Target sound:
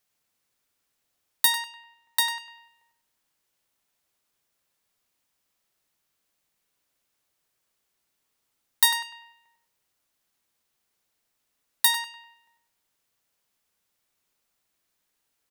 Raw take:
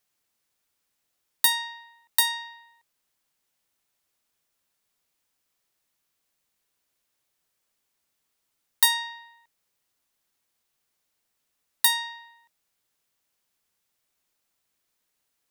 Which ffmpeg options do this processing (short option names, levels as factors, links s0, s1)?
-filter_complex "[0:a]asettb=1/sr,asplit=3[s0][s1][s2];[s0]atrim=end=1.654[s3];[s1]atrim=start=1.65:end=2.46,asetpts=PTS-STARTPTS,afade=t=in:d=0.004:c=qsin,afade=t=out:st=0.806:d=0.004:c=qsin,equalizer=f=15000:t=o:w=1.3:g=-5.5[s4];[s2]atrim=start=2.456[s5];[s3][s4]acrossfade=d=0.004:c1=hsin:c2=qsin[s6];[s6][s5]acrossfade=d=0.004:c1=qsin:c2=hsin,asplit=2[s7][s8];[s8]adelay=99,lowpass=f=2400:p=1,volume=0.631,asplit=2[s9][s10];[s10]adelay=99,lowpass=f=2400:p=1,volume=0.37,asplit=2[s11][s12];[s12]adelay=99,lowpass=f=2400:p=1,volume=0.37,asplit=2[s13][s14];[s14]adelay=99,lowpass=f=2400:p=1,volume=0.37,asplit=2[s15][s16];[s16]adelay=99,lowpass=f=2400:p=1,volume=0.37[s17];[s9][s11][s13][s15][s17]amix=inputs=5:normalize=0[s18];[s7][s18]amix=inputs=2:normalize=0"